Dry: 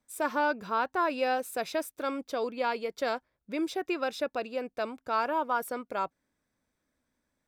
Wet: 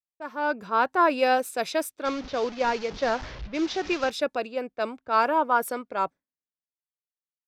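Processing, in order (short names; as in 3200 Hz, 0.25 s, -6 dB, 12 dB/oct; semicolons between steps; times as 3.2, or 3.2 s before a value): 2.05–4.1 delta modulation 32 kbps, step -36.5 dBFS; low-pass opened by the level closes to 1400 Hz, open at -28 dBFS; gate with hold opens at -43 dBFS; AGC gain up to 9 dB; three-band expander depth 70%; gain -3.5 dB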